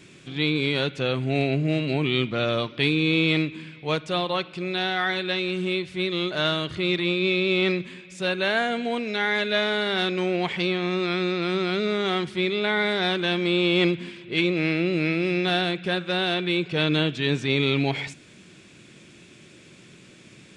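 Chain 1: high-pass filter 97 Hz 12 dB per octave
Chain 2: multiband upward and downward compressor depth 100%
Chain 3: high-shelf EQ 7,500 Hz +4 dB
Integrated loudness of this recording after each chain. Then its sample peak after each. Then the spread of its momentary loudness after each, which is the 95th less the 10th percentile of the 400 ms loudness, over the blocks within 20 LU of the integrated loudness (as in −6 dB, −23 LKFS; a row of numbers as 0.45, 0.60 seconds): −24.0, −23.5, −24.0 LKFS; −9.0, −7.5, −8.5 dBFS; 5, 5, 5 LU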